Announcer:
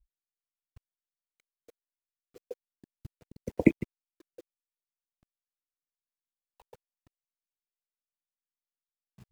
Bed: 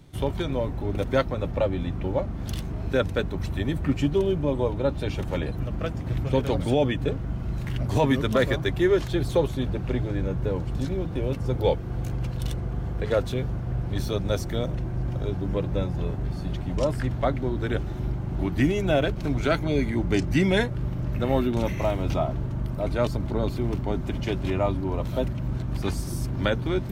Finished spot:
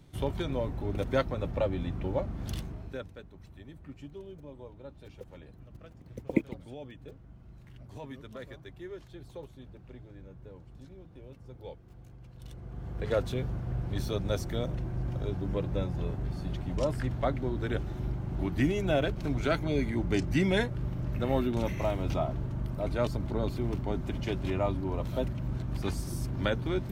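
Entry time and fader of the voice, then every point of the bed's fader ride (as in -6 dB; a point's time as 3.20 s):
2.70 s, -6.0 dB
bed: 2.58 s -5 dB
3.18 s -22 dB
12.25 s -22 dB
13.09 s -5 dB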